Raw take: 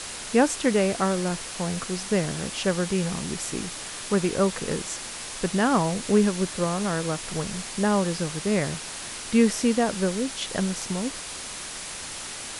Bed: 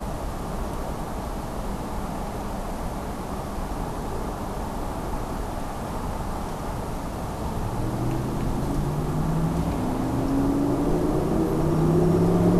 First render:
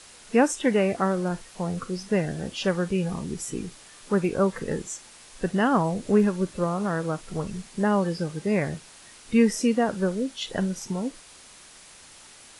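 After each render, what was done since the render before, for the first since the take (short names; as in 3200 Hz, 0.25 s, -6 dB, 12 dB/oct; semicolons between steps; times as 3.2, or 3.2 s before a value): noise print and reduce 13 dB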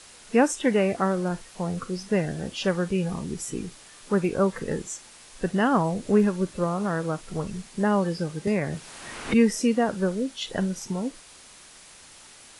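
8.47–9.34 three-band squash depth 100%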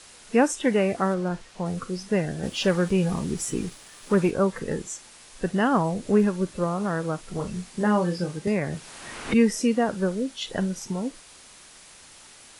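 1.14–1.66 air absorption 56 m; 2.43–4.31 sample leveller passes 1; 7.35–8.38 doubler 28 ms -6 dB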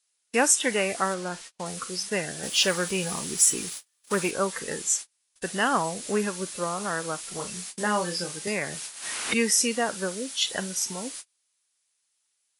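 gate -41 dBFS, range -36 dB; tilt +4 dB/oct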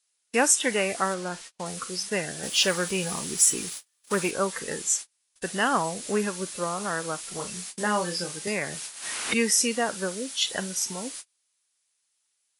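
nothing audible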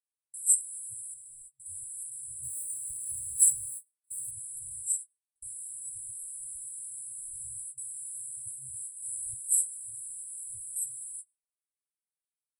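FFT band-reject 130–7600 Hz; gate with hold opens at -43 dBFS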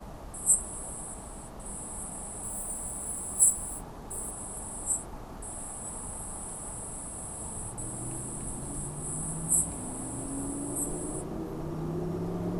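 add bed -13.5 dB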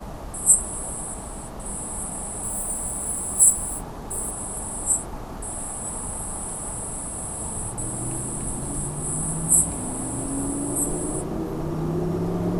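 gain +8 dB; limiter -3 dBFS, peak gain reduction 3 dB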